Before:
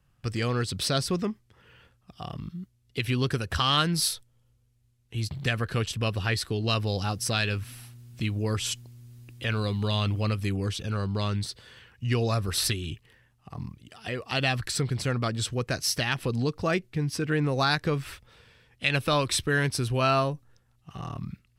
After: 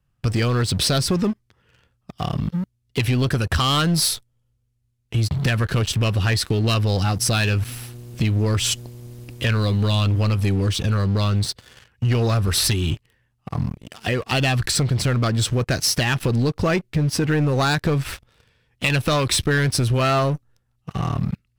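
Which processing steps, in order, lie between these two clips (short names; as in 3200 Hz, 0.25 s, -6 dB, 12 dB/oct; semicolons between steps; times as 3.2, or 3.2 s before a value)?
low shelf 250 Hz +4 dB; sample leveller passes 3; compressor 3:1, threshold -18 dBFS, peak gain reduction 5 dB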